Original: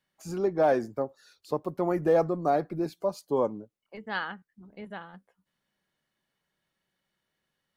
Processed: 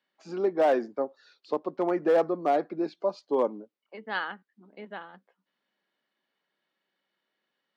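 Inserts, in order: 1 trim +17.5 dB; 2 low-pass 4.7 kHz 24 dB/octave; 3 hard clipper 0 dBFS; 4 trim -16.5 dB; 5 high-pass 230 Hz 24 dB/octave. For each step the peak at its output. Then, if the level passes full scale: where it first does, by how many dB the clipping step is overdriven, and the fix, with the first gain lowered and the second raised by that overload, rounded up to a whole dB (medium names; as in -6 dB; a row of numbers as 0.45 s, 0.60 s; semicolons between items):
+4.5 dBFS, +4.5 dBFS, 0.0 dBFS, -16.5 dBFS, -13.5 dBFS; step 1, 4.5 dB; step 1 +12.5 dB, step 4 -11.5 dB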